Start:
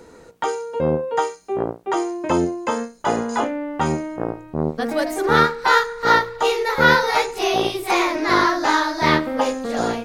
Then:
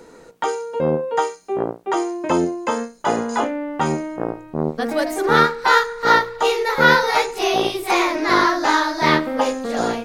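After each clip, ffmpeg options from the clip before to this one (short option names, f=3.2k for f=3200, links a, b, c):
-af "equalizer=f=71:w=1.5:g=-11.5,volume=1dB"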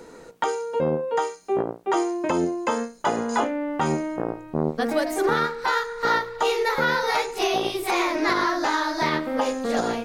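-af "alimiter=limit=-12.5dB:level=0:latency=1:release=293"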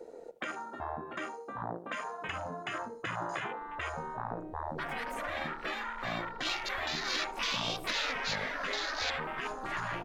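-filter_complex "[0:a]afwtdn=0.02,asplit=2[a][b];[b]adelay=75,lowpass=f=1.2k:p=1,volume=-15dB,asplit=2[c][d];[d]adelay=75,lowpass=f=1.2k:p=1,volume=0.46,asplit=2[e][f];[f]adelay=75,lowpass=f=1.2k:p=1,volume=0.46,asplit=2[g][h];[h]adelay=75,lowpass=f=1.2k:p=1,volume=0.46[i];[a][c][e][g][i]amix=inputs=5:normalize=0,afftfilt=real='re*lt(hypot(re,im),0.112)':imag='im*lt(hypot(re,im),0.112)':win_size=1024:overlap=0.75"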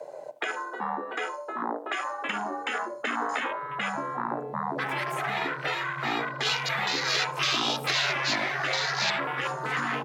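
-af "afreqshift=120,volume=7dB"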